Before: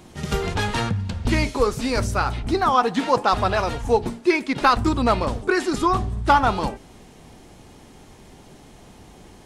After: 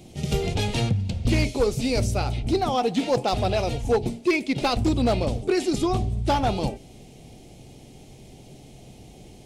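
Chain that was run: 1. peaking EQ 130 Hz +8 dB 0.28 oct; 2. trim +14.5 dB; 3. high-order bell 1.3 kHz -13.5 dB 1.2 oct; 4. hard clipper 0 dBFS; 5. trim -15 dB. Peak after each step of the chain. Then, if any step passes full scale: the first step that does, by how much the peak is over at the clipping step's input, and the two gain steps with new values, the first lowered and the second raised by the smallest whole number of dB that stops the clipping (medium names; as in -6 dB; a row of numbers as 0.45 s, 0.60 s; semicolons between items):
-4.0 dBFS, +10.5 dBFS, +7.0 dBFS, 0.0 dBFS, -15.0 dBFS; step 2, 7.0 dB; step 2 +7.5 dB, step 5 -8 dB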